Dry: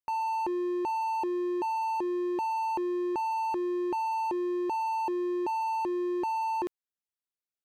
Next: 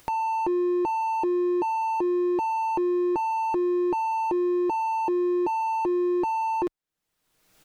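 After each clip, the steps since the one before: tilt EQ -1.5 dB/octave; comb 6.4 ms, depth 35%; upward compressor, threshold -33 dBFS; trim +4 dB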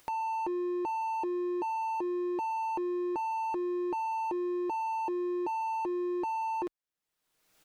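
bass shelf 240 Hz -7.5 dB; trim -6 dB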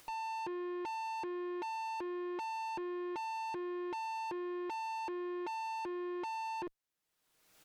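valve stage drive 41 dB, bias 0.25; trim +2.5 dB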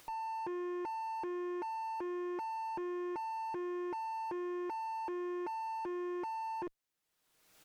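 slew-rate limiter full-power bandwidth 13 Hz; trim +1 dB

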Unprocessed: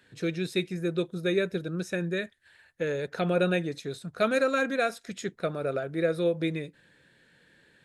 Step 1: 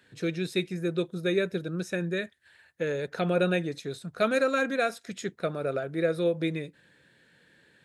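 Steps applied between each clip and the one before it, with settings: high-pass 58 Hz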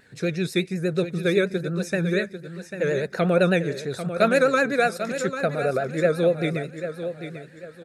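graphic EQ with 31 bands 315 Hz -6 dB, 1 kHz -4 dB, 3.15 kHz -10 dB; vibrato 8.3 Hz 88 cents; feedback delay 794 ms, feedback 33%, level -10 dB; trim +6.5 dB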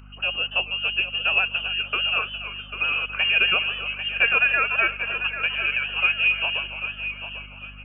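frequency inversion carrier 3 kHz; hum 50 Hz, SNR 20 dB; modulated delay 285 ms, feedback 31%, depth 122 cents, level -12.5 dB; trim -1 dB

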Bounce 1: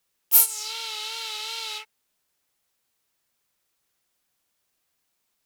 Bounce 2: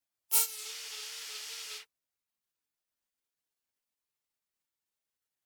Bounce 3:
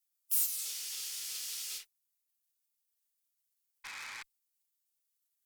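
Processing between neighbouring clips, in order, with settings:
spectral gate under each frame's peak -10 dB weak; trim -4 dB
painted sound noise, 3.84–4.23 s, 770–2600 Hz -37 dBFS; valve stage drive 38 dB, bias 0.65; pre-emphasis filter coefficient 0.9; trim +8.5 dB

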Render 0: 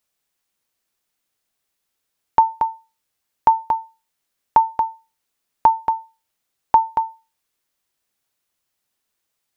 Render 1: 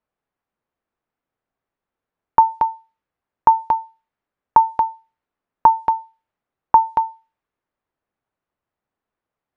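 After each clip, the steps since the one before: level-controlled noise filter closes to 1.3 kHz, open at -14 dBFS; trim +2 dB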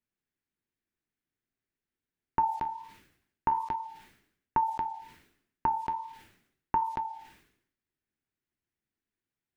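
high-order bell 790 Hz -12 dB; flange 1.3 Hz, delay 7.2 ms, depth 7.6 ms, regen -61%; decay stretcher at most 82 dB/s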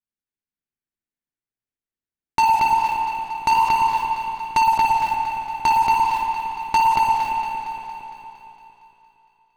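waveshaping leveller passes 5; echo whose repeats swap between lows and highs 115 ms, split 900 Hz, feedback 79%, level -8 dB; spring tank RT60 3 s, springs 53/57 ms, chirp 45 ms, DRR 1 dB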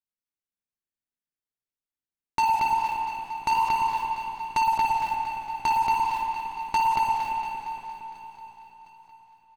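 feedback delay 707 ms, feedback 55%, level -20.5 dB; trim -6 dB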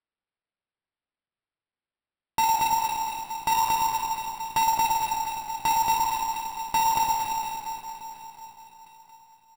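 sample-rate reducer 6.5 kHz, jitter 0%

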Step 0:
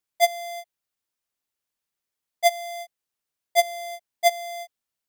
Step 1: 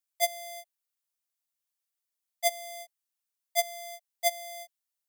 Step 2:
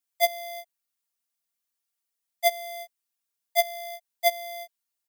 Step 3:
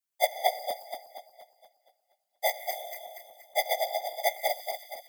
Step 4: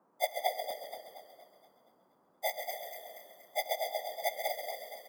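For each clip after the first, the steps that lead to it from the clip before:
elliptic high-pass 590 Hz; treble shelf 4.4 kHz +10.5 dB; trim -9 dB
comb 4.3 ms, depth 93%
backward echo that repeats 118 ms, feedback 69%, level -2 dB; whisper effect; trim -5 dB
band noise 180–1100 Hz -64 dBFS; frequency-shifting echo 134 ms, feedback 50%, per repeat -35 Hz, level -8 dB; trim -6.5 dB

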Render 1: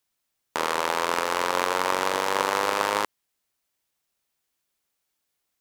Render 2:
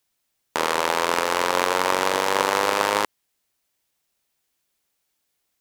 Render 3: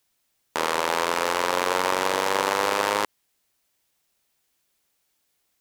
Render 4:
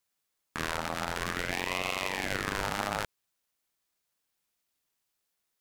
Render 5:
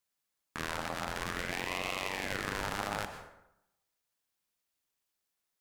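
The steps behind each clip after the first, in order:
peaking EQ 1.2 kHz -2 dB; trim +4 dB
peak limiter -9 dBFS, peak gain reduction 8 dB; trim +2.5 dB
ring modulator with a swept carrier 960 Hz, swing 70%, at 0.53 Hz; trim -6 dB
plate-style reverb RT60 0.84 s, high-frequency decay 0.6×, pre-delay 105 ms, DRR 8.5 dB; trim -4 dB

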